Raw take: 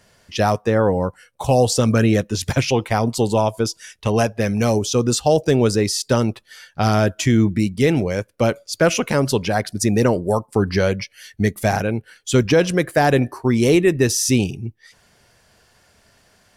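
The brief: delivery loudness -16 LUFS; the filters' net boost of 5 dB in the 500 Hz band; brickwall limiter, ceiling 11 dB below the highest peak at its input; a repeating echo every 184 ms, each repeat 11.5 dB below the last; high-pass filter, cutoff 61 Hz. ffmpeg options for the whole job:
-af "highpass=61,equalizer=f=500:t=o:g=6,alimiter=limit=0.251:level=0:latency=1,aecho=1:1:184|368|552:0.266|0.0718|0.0194,volume=2"

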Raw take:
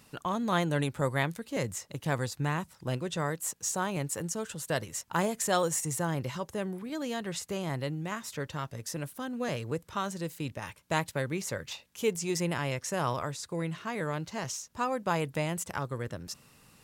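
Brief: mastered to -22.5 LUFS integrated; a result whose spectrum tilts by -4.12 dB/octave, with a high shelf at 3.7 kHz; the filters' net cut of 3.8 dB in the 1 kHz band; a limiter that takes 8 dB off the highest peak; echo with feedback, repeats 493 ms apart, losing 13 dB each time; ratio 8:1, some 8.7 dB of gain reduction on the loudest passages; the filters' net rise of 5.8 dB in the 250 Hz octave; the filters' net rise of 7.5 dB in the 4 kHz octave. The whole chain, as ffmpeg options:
-af "equalizer=f=250:t=o:g=8.5,equalizer=f=1000:t=o:g=-6.5,highshelf=f=3700:g=7.5,equalizer=f=4000:t=o:g=5,acompressor=threshold=0.0316:ratio=8,alimiter=level_in=1.19:limit=0.0631:level=0:latency=1,volume=0.841,aecho=1:1:493|986|1479:0.224|0.0493|0.0108,volume=4.47"

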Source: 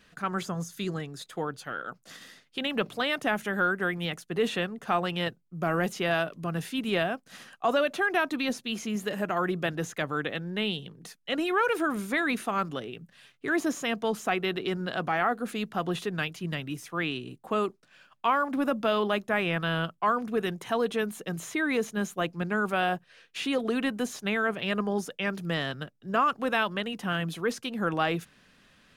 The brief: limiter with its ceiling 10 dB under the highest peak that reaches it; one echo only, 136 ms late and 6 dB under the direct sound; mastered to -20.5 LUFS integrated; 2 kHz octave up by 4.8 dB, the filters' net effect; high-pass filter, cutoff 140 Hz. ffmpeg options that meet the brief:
-af "highpass=140,equalizer=f=2000:t=o:g=6.5,alimiter=limit=0.112:level=0:latency=1,aecho=1:1:136:0.501,volume=2.99"

